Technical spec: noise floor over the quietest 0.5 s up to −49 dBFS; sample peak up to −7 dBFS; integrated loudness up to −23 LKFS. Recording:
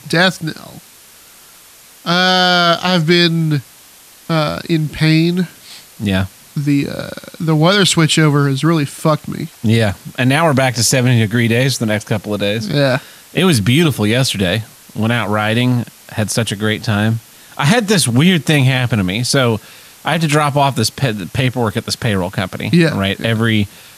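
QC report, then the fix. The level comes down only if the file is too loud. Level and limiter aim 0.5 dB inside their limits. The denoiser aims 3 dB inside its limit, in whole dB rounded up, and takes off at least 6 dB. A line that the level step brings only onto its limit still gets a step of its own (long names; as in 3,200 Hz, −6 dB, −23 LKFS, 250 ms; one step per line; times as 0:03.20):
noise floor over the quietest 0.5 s −42 dBFS: out of spec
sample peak −1.5 dBFS: out of spec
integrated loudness −14.5 LKFS: out of spec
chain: level −9 dB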